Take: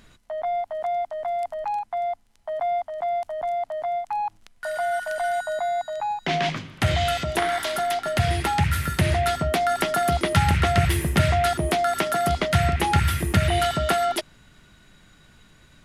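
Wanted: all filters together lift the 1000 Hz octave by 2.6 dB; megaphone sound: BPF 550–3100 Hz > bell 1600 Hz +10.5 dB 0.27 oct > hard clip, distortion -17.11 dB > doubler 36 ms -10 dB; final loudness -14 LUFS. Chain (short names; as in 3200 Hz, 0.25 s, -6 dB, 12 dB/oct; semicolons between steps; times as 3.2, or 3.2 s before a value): BPF 550–3100 Hz; bell 1000 Hz +5 dB; bell 1600 Hz +10.5 dB 0.27 oct; hard clip -15.5 dBFS; doubler 36 ms -10 dB; gain +9 dB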